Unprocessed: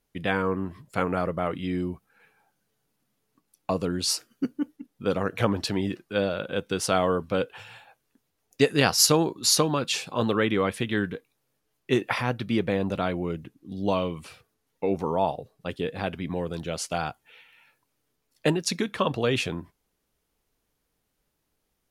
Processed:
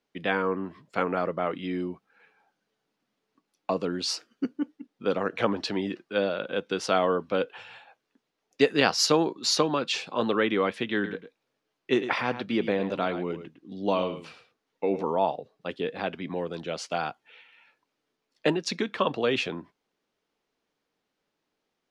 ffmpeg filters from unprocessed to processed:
-filter_complex "[0:a]asettb=1/sr,asplit=3[s0][s1][s2];[s0]atrim=end=10.934[s3];[s1]atrim=start=10.93:end=15.03,asetpts=PTS-STARTPTS,afade=t=in:d=0.004:c=qsin,afade=t=out:st=4.096:d=0.004:c=qsin,aecho=1:1:107:0.282,atrim=end_sample=180810[s4];[s2]atrim=start=15.026[s5];[s3][s4]acrossfade=d=0.004:c1=hsin:c2=qsin[s6];[s6][s5]acrossfade=d=0.004:c1=qsin:c2=hsin,acrossover=split=180 6000:gain=0.112 1 0.0794[s7][s8][s9];[s7][s8][s9]amix=inputs=3:normalize=0"

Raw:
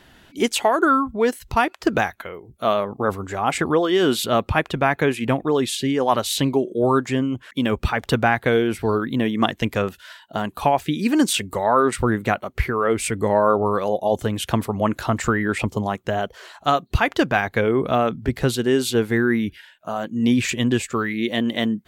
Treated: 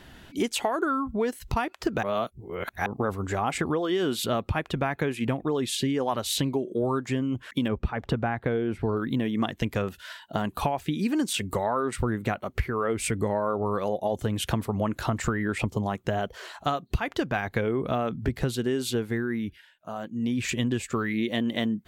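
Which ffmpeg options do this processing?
-filter_complex "[0:a]asettb=1/sr,asplit=3[s0][s1][s2];[s0]atrim=end=7.684[s3];[s1]atrim=start=7.68:end=8.97,asetpts=PTS-STARTPTS,afade=t=in:d=0.004:c=qsin,afade=t=out:st=1.286:d=0.004:c=qsin,lowpass=f=1400:p=1[s4];[s2]atrim=start=8.966[s5];[s3][s4]acrossfade=d=0.004:c1=hsin:c2=qsin[s6];[s6][s5]acrossfade=d=0.004:c1=qsin:c2=hsin,asplit=5[s7][s8][s9][s10][s11];[s7]atrim=end=2.032[s12];[s8]atrim=start=2.028:end=2.862,asetpts=PTS-STARTPTS,areverse[s13];[s9]atrim=start=2.858:end=19.28,asetpts=PTS-STARTPTS,afade=t=out:st=15.972:d=0.45:silence=0.334965[s14];[s10]atrim=start=19.28:end=20.32,asetpts=PTS-STARTPTS,volume=0.335[s15];[s11]atrim=start=20.32,asetpts=PTS-STARTPTS,afade=t=in:d=0.45:silence=0.334965[s16];[s12][s13]acrossfade=d=0.004:c1=hsin:c2=hsin[s17];[s14][s15][s16]concat=n=3:v=0:a=1[s18];[s17][s18]acrossfade=d=0.004:c1=hsin:c2=hsin,lowshelf=f=230:g=5,acompressor=threshold=0.0631:ratio=5"

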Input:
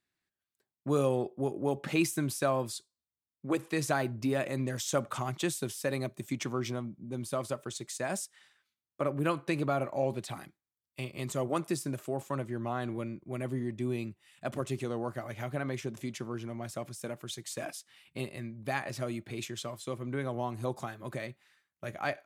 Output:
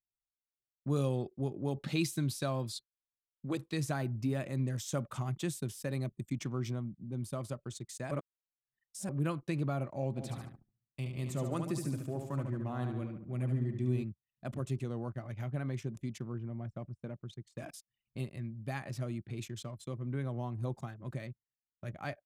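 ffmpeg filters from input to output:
-filter_complex "[0:a]asettb=1/sr,asplit=3[s0][s1][s2];[s0]atrim=end=0.964[s3];[s1]atrim=start=0.96:end=3.77,asetpts=PTS-STARTPTS,afade=t=in:d=0.004:c=qsin,afade=t=out:st=2.806:d=0.004:c=qsin,equalizer=f=4000:w=1.9:g=9.5[s4];[s2]atrim=start=3.766[s5];[s3][s4]acrossfade=d=0.004:c1=hsin:c2=qsin[s6];[s6][s5]acrossfade=d=0.004:c1=qsin:c2=hsin,asplit=3[s7][s8][s9];[s7]afade=t=out:st=10.16:d=0.02[s10];[s8]aecho=1:1:72|144|216|288|360|432|504:0.501|0.281|0.157|0.088|0.0493|0.0276|0.0155,afade=t=in:st=10.16:d=0.02,afade=t=out:st=14.02:d=0.02[s11];[s9]afade=t=in:st=14.02:d=0.02[s12];[s10][s11][s12]amix=inputs=3:normalize=0,asettb=1/sr,asplit=3[s13][s14][s15];[s13]atrim=end=16.334[s16];[s14]atrim=start=16.33:end=17.58,asetpts=PTS-STARTPTS,afade=t=in:d=0.004:c=qsin,afade=t=out:st=1.246:d=0.004:c=qsin,lowpass=f=2000:p=1[s17];[s15]atrim=start=17.576[s18];[s16][s17]acrossfade=d=0.004:c1=hsin:c2=qsin[s19];[s19][s18]acrossfade=d=0.004:c1=qsin:c2=hsin,asplit=3[s20][s21][s22];[s20]atrim=end=8.112[s23];[s21]atrim=start=8.108:end=9.092,asetpts=PTS-STARTPTS,areverse[s24];[s22]atrim=start=9.088[s25];[s23][s24]acrossfade=d=0.004:c1=hsin:c2=hsin[s26];[s26][s25]acrossfade=d=0.004:c1=hsin:c2=hsin,anlmdn=0.0158,bass=f=250:g=12,treble=f=4000:g=2,volume=0.376"

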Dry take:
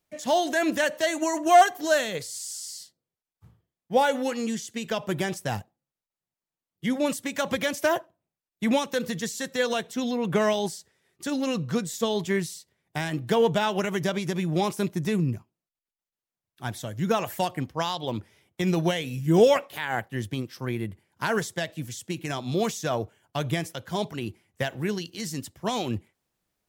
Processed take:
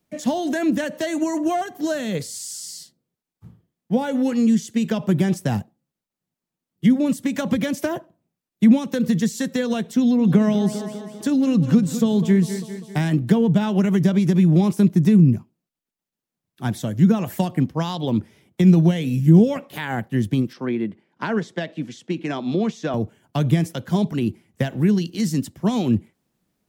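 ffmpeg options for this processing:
-filter_complex "[0:a]asettb=1/sr,asplit=3[s0][s1][s2];[s0]atrim=end=9.994[s3];[s1]atrim=start=9.99:end=13.05,asetpts=PTS-STARTPTS,afade=t=in:d=0.004:c=qsin,afade=t=out:st=3.056:d=0.004:c=qsin,aecho=1:1:198|396|594|792|990:0.2|0.106|0.056|0.0297|0.0157,atrim=end_sample=134946[s4];[s2]atrim=start=13.046[s5];[s3][s4]acrossfade=d=0.004:c1=hsin:c2=qsin[s6];[s6][s5]acrossfade=d=0.004:c1=qsin:c2=hsin,asettb=1/sr,asplit=3[s7][s8][s9];[s7]atrim=end=20.534[s10];[s8]atrim=start=20.53:end=22.94,asetpts=PTS-STARTPTS,afade=t=in:d=0.004:c=qsin,afade=t=out:st=2.406:d=0.004:c=qsin,highpass=260,lowpass=3800[s11];[s9]atrim=start=22.936[s12];[s10][s11]acrossfade=d=0.004:c1=hsin:c2=qsin[s13];[s13][s12]acrossfade=d=0.004:c1=qsin:c2=hsin,equalizer=f=210:w=0.81:g=12,acrossover=split=250[s14][s15];[s15]acompressor=threshold=0.0501:ratio=6[s16];[s14][s16]amix=inputs=2:normalize=0,volume=1.41"

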